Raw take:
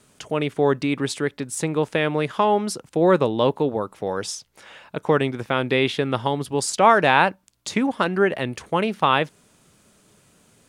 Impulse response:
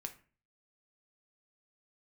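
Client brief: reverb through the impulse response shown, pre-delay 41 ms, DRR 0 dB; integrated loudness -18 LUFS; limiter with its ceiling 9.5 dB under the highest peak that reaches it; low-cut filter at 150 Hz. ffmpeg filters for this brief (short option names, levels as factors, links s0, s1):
-filter_complex "[0:a]highpass=150,alimiter=limit=0.282:level=0:latency=1,asplit=2[s0][s1];[1:a]atrim=start_sample=2205,adelay=41[s2];[s1][s2]afir=irnorm=-1:irlink=0,volume=1.41[s3];[s0][s3]amix=inputs=2:normalize=0,volume=1.5"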